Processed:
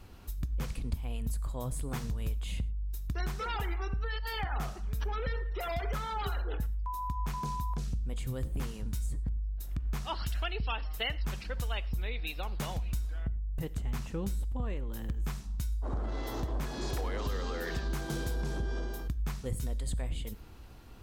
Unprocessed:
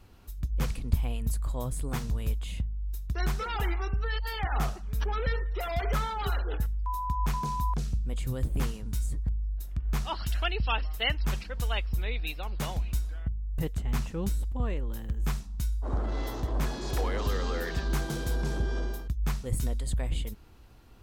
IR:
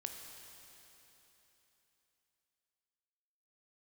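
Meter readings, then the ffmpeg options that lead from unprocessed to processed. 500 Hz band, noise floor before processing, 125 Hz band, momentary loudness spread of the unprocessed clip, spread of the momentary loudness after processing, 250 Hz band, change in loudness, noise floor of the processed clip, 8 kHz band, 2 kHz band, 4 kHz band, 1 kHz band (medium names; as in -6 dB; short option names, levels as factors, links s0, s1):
-3.5 dB, -43 dBFS, -4.0 dB, 5 LU, 3 LU, -3.5 dB, -4.0 dB, -45 dBFS, -3.5 dB, -4.0 dB, -4.0 dB, -4.0 dB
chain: -filter_complex "[0:a]acompressor=threshold=0.0178:ratio=4,asplit=2[s0][s1];[1:a]atrim=start_sample=2205,afade=t=out:st=0.17:d=0.01,atrim=end_sample=7938[s2];[s1][s2]afir=irnorm=-1:irlink=0,volume=0.708[s3];[s0][s3]amix=inputs=2:normalize=0"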